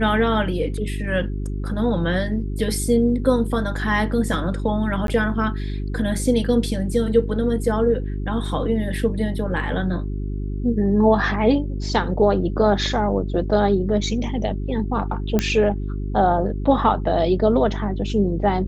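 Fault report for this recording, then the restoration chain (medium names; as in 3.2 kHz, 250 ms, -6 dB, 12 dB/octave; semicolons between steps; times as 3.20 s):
hum 50 Hz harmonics 8 -26 dBFS
5.07–5.08 s: dropout 12 ms
15.39 s: pop -6 dBFS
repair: de-click; de-hum 50 Hz, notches 8; interpolate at 5.07 s, 12 ms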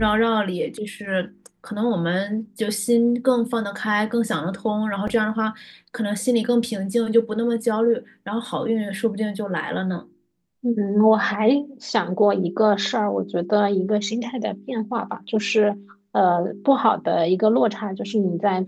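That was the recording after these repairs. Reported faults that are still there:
nothing left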